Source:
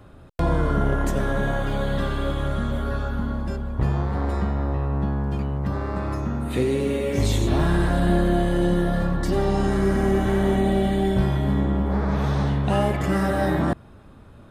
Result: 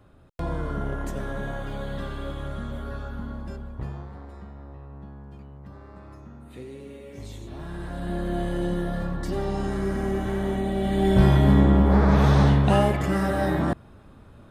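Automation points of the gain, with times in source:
3.64 s -8 dB
4.28 s -18 dB
7.53 s -18 dB
8.43 s -6 dB
10.74 s -6 dB
11.26 s +5 dB
12.49 s +5 dB
13.09 s -2 dB

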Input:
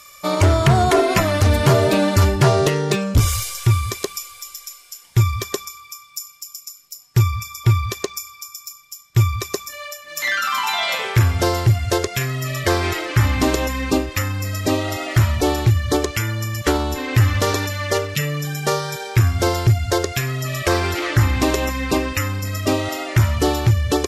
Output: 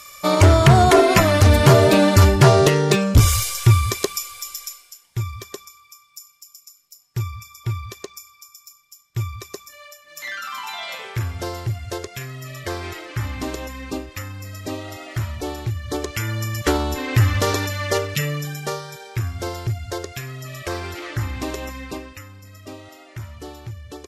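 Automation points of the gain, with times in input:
4.66 s +2.5 dB
5.07 s -10 dB
15.79 s -10 dB
16.35 s -1 dB
18.31 s -1 dB
18.87 s -9.5 dB
21.78 s -9.5 dB
22.26 s -18.5 dB

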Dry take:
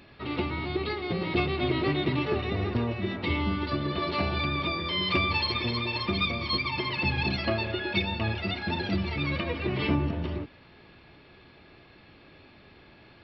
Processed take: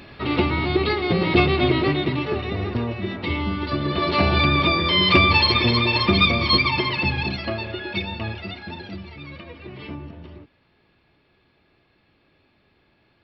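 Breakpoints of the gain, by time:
1.54 s +9.5 dB
2.18 s +3 dB
3.54 s +3 dB
4.36 s +10.5 dB
6.61 s +10.5 dB
7.42 s +0.5 dB
8.2 s +0.5 dB
9.17 s -9 dB

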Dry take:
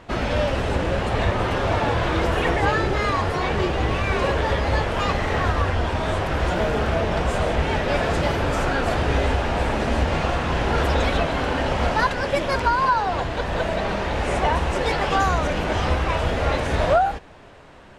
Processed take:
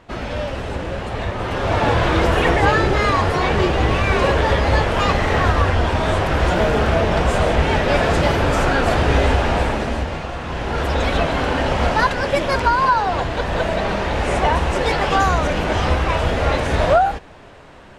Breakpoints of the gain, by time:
1.33 s -3 dB
1.88 s +5 dB
9.53 s +5 dB
10.27 s -5.5 dB
11.25 s +3.5 dB

